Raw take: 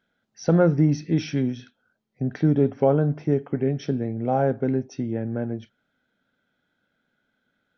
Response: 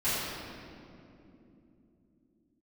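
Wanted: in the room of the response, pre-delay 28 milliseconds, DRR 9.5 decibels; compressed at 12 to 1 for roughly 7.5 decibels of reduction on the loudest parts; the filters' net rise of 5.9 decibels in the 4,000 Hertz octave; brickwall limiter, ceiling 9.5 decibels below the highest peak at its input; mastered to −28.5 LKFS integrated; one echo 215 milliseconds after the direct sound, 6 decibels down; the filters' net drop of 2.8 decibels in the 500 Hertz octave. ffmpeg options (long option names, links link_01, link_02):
-filter_complex "[0:a]equalizer=frequency=500:width_type=o:gain=-3.5,equalizer=frequency=4000:width_type=o:gain=8.5,acompressor=threshold=-22dB:ratio=12,alimiter=limit=-21dB:level=0:latency=1,aecho=1:1:215:0.501,asplit=2[link_01][link_02];[1:a]atrim=start_sample=2205,adelay=28[link_03];[link_02][link_03]afir=irnorm=-1:irlink=0,volume=-20.5dB[link_04];[link_01][link_04]amix=inputs=2:normalize=0,volume=1.5dB"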